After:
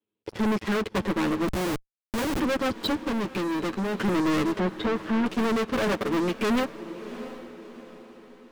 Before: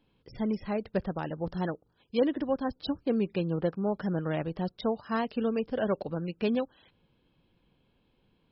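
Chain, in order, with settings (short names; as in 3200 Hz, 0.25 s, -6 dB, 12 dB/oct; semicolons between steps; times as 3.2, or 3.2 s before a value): minimum comb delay 9.2 ms; speaker cabinet 100–4200 Hz, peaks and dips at 130 Hz -10 dB, 300 Hz +5 dB, 420 Hz +8 dB, 730 Hz -4 dB; sample leveller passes 5; 4.54–5.26 treble ducked by the level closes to 1800 Hz, closed at -20 dBFS; sample leveller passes 1; diffused feedback echo 0.695 s, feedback 44%, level -15 dB; dynamic EQ 470 Hz, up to -5 dB, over -29 dBFS, Q 1.3; 1.48–2.4 Schmitt trigger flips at -21.5 dBFS; 2.99–3.95 compressor 2:1, threshold -23 dBFS, peak gain reduction 4.5 dB; gain -5.5 dB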